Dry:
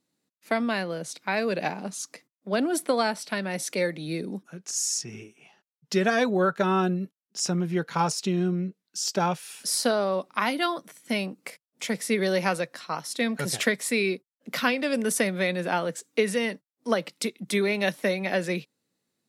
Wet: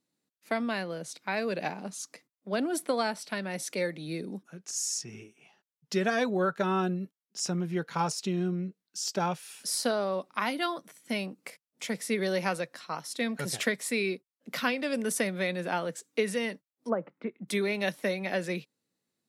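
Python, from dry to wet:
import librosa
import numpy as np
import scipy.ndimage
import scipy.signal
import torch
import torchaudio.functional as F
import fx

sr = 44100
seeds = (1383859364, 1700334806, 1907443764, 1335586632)

y = fx.lowpass(x, sr, hz=fx.line((16.88, 1200.0), (17.47, 2400.0)), slope=24, at=(16.88, 17.47), fade=0.02)
y = y * 10.0 ** (-4.5 / 20.0)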